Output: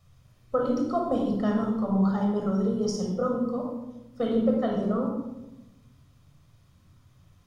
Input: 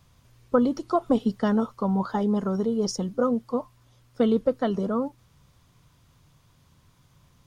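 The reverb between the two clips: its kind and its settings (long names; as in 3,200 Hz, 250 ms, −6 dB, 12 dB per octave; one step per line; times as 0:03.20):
rectangular room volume 3,800 cubic metres, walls furnished, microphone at 6.3 metres
level −8 dB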